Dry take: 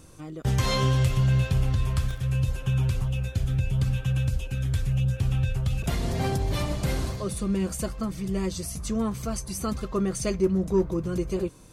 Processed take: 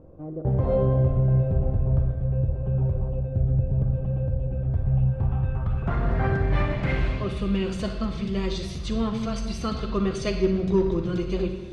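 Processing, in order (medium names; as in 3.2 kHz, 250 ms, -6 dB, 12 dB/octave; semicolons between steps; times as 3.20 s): on a send at -5 dB: reverberation RT60 1.2 s, pre-delay 39 ms; on the sum: low-pass sweep 590 Hz -> 3.6 kHz, 4.45–7.83 s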